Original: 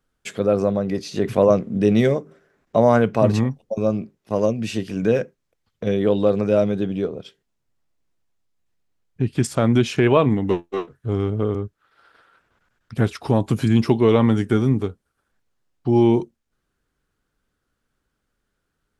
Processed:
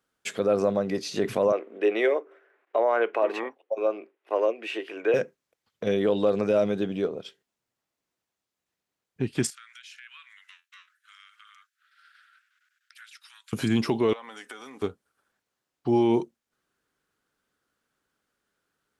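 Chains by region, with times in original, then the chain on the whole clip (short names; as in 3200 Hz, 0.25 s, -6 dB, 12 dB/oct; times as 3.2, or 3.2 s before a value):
1.52–5.14 Chebyshev high-pass 340 Hz, order 4 + resonant high shelf 3700 Hz -12.5 dB, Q 1.5
9.5–13.53 steep high-pass 1400 Hz 48 dB/oct + compressor 3:1, threshold -50 dBFS
14.13–14.82 HPF 820 Hz + comb 4 ms, depth 33% + compressor 12:1, threshold -36 dBFS
whole clip: HPF 370 Hz 6 dB/oct; limiter -13.5 dBFS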